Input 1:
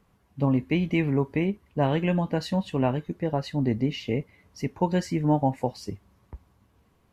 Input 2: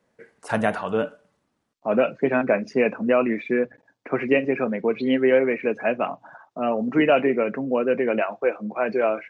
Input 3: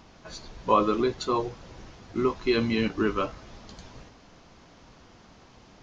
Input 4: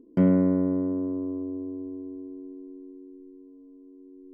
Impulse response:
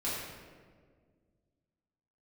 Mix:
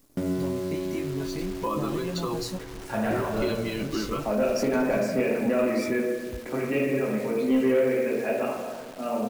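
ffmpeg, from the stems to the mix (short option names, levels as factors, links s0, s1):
-filter_complex "[0:a]aexciter=amount=6:drive=7.5:freq=4100,acompressor=threshold=0.0282:ratio=6,volume=1.19,asplit=3[s0][s1][s2];[s0]atrim=end=2.57,asetpts=PTS-STARTPTS,afade=t=out:st=2.566:d=0.004:c=hsin[s3];[s1]atrim=start=2.57:end=3.82,asetpts=PTS-STARTPTS,volume=0[s4];[s2]atrim=start=3.82,asetpts=PTS-STARTPTS,afade=t=in:d=0.004:c=hsin[s5];[s3][s4][s5]concat=n=3:v=0:a=1,asplit=2[s6][s7];[1:a]adelay=2400,volume=1.33,asplit=2[s8][s9];[s9]volume=0.2[s10];[2:a]aecho=1:1:6:0.55,adelay=950,volume=0.794,asplit=2[s11][s12];[s12]volume=0.0794[s13];[3:a]volume=0.422,asplit=2[s14][s15];[s15]volume=0.531[s16];[s7]apad=whole_len=515706[s17];[s8][s17]sidechaingate=range=0.178:threshold=0.00398:ratio=16:detection=peak[s18];[s6][s18]amix=inputs=2:normalize=0,flanger=delay=16:depth=6:speed=0.37,acompressor=threshold=0.0355:ratio=6,volume=1[s19];[s11][s14]amix=inputs=2:normalize=0,acrusher=bits=6:mix=0:aa=0.5,acompressor=threshold=0.0398:ratio=6,volume=1[s20];[4:a]atrim=start_sample=2205[s21];[s10][s13][s16]amix=inputs=3:normalize=0[s22];[s22][s21]afir=irnorm=-1:irlink=0[s23];[s19][s20][s23]amix=inputs=3:normalize=0,lowshelf=f=130:g=5.5,acrusher=bits=8:dc=4:mix=0:aa=0.000001,asoftclip=type=tanh:threshold=0.2"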